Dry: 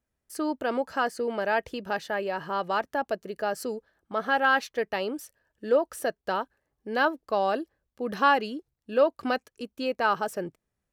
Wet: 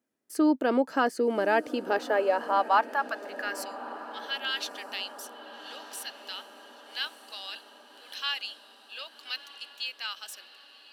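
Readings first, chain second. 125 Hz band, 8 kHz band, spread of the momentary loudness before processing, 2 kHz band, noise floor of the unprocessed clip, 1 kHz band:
can't be measured, +1.0 dB, 13 LU, −4.0 dB, −84 dBFS, −3.0 dB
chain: high-pass filter sweep 270 Hz → 3,300 Hz, 0:01.66–0:04.03
feedback delay with all-pass diffusion 1,231 ms, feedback 56%, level −15 dB

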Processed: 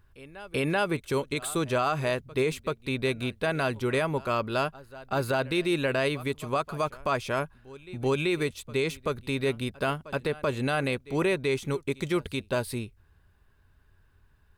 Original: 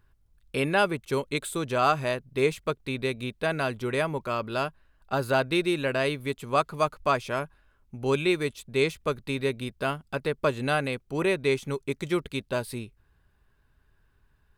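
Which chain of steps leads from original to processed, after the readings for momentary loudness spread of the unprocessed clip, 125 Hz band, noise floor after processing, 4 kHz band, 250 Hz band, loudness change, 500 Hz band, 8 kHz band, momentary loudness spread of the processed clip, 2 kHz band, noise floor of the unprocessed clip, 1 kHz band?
8 LU, +1.0 dB, −62 dBFS, −1.0 dB, 0.0 dB, −1.0 dB, −1.0 dB, +1.0 dB, 6 LU, −1.0 dB, −66 dBFS, −2.5 dB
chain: parametric band 88 Hz +9 dB 0.22 octaves
on a send: backwards echo 385 ms −23 dB
on the sum: brickwall limiter −19 dBFS, peak gain reduction 8.5 dB
level +2 dB

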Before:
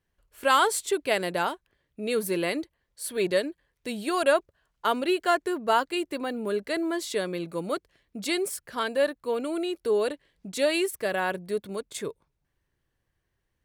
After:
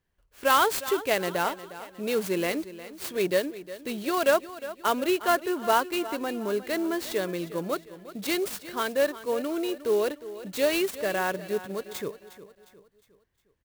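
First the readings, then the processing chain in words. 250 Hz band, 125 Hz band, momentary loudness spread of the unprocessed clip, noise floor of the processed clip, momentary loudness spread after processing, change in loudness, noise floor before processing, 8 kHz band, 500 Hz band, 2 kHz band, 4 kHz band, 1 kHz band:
0.0 dB, +0.5 dB, 12 LU, −68 dBFS, 12 LU, 0.0 dB, −79 dBFS, −1.0 dB, 0.0 dB, 0.0 dB, −0.5 dB, 0.0 dB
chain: on a send: repeating echo 358 ms, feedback 44%, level −15 dB
on the sum: converter with an unsteady clock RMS 0.028 ms

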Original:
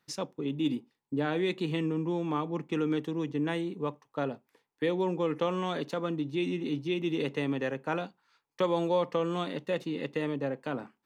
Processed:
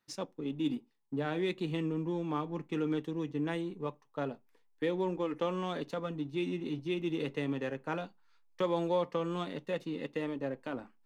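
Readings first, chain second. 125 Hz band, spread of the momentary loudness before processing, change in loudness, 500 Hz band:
−3.5 dB, 6 LU, −3.5 dB, −3.5 dB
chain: flanger 0.19 Hz, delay 3.1 ms, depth 4.1 ms, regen −70%
in parallel at −8.5 dB: slack as between gear wheels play −35.5 dBFS
on the sum: level −2 dB

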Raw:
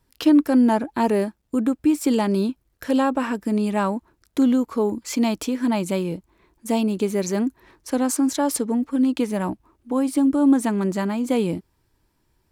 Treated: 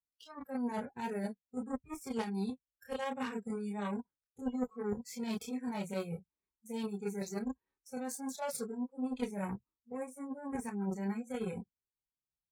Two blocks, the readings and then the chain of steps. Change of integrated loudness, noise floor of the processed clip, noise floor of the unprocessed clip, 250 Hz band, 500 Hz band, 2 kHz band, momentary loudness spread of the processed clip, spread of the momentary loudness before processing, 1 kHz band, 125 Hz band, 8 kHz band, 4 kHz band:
−17.5 dB, below −85 dBFS, −69 dBFS, −18.5 dB, −16.0 dB, −14.0 dB, 7 LU, 10 LU, −15.5 dB, −13.0 dB, −16.0 dB, −16.0 dB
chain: multi-voice chorus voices 6, 0.19 Hz, delay 28 ms, depth 3.9 ms
reversed playback
downward compressor 6 to 1, threshold −30 dBFS, peak gain reduction 15 dB
reversed playback
harmonic generator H 2 −15 dB, 3 −14 dB, 8 −26 dB, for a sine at −20.5 dBFS
notch comb filter 340 Hz
noise reduction from a noise print of the clip's start 27 dB
level +1 dB

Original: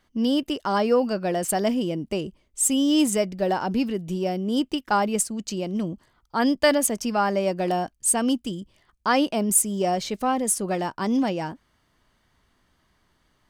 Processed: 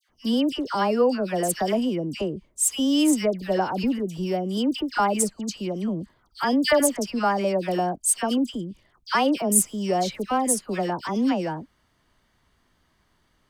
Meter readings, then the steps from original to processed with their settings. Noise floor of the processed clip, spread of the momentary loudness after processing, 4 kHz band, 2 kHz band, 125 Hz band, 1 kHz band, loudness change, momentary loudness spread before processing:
−67 dBFS, 9 LU, 0.0 dB, 0.0 dB, 0.0 dB, 0.0 dB, 0.0 dB, 10 LU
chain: all-pass dispersion lows, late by 94 ms, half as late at 1,600 Hz

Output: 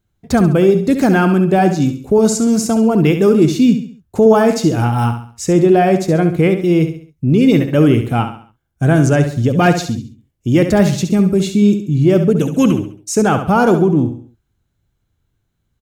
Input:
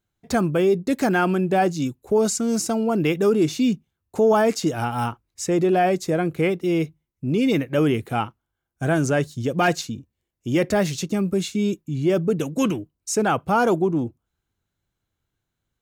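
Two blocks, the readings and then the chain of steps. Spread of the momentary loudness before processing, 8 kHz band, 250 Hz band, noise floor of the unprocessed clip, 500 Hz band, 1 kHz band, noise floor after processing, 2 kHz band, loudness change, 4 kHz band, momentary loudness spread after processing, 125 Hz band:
9 LU, +4.5 dB, +10.0 dB, −81 dBFS, +7.0 dB, +5.5 dB, −68 dBFS, +5.0 dB, +8.5 dB, +4.5 dB, 8 LU, +12.0 dB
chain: low-shelf EQ 250 Hz +10 dB
repeating echo 68 ms, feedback 39%, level −9 dB
level +4 dB

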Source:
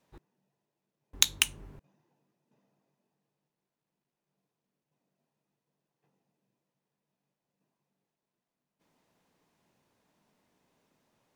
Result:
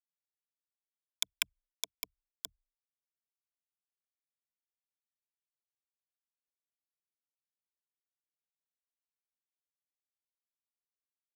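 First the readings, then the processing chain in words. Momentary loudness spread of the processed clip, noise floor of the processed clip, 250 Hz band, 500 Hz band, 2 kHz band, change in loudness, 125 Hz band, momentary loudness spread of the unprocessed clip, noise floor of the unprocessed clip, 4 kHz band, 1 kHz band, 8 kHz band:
12 LU, below −85 dBFS, −16.0 dB, −6.5 dB, −8.5 dB, −12.5 dB, below −20 dB, 4 LU, below −85 dBFS, −8.0 dB, −8.0 dB, −10.0 dB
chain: in parallel at −8.5 dB: soft clipping −13 dBFS, distortion −8 dB
on the sum: parametric band 280 Hz −9 dB 2.4 octaves
gate with flip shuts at −7 dBFS, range −24 dB
on a send: delay with a high-pass on its return 612 ms, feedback 42%, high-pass 3,900 Hz, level −14.5 dB
on the sum: bit reduction 5 bits
brickwall limiter −14 dBFS, peak gain reduction 12.5 dB
EQ curve with evenly spaced ripples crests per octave 1.7, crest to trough 17 dB
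level +2.5 dB

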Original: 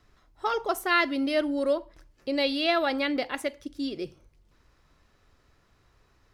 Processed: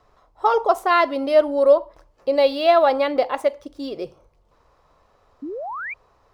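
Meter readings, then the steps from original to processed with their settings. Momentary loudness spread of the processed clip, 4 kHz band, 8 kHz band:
17 LU, 0.0 dB, can't be measured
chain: running median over 3 samples
flat-topped bell 730 Hz +12 dB
sound drawn into the spectrogram rise, 0:05.42–0:05.94, 260–2,500 Hz −30 dBFS

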